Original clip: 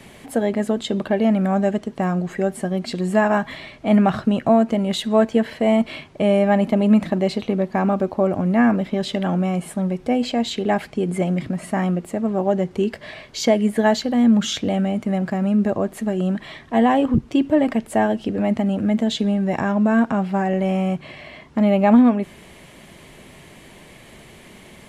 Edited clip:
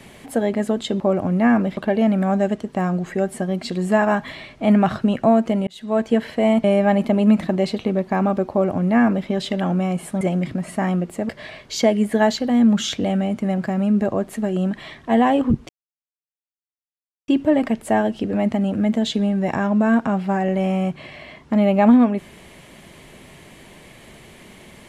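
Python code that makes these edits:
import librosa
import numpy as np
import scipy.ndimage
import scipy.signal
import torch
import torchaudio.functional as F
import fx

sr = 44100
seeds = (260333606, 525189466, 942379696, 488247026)

y = fx.edit(x, sr, fx.fade_in_span(start_s=4.9, length_s=0.46),
    fx.cut(start_s=5.87, length_s=0.4),
    fx.duplicate(start_s=8.14, length_s=0.77, to_s=1.0),
    fx.cut(start_s=9.84, length_s=1.32),
    fx.cut(start_s=12.24, length_s=0.69),
    fx.insert_silence(at_s=17.33, length_s=1.59), tone=tone)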